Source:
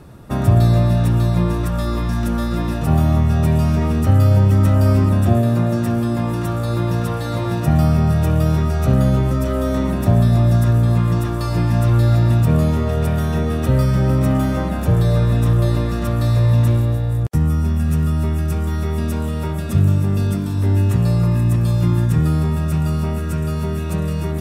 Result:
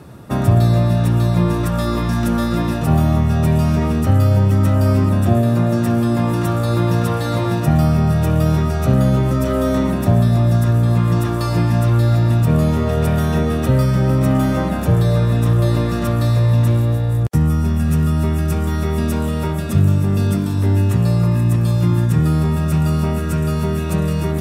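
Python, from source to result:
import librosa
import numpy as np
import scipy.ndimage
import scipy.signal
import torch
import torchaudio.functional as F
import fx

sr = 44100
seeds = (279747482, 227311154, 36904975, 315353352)

p1 = scipy.signal.sosfilt(scipy.signal.butter(2, 82.0, 'highpass', fs=sr, output='sos'), x)
p2 = fx.rider(p1, sr, range_db=3, speed_s=0.5)
p3 = p1 + (p2 * librosa.db_to_amplitude(2.0))
y = p3 * librosa.db_to_amplitude(-5.0)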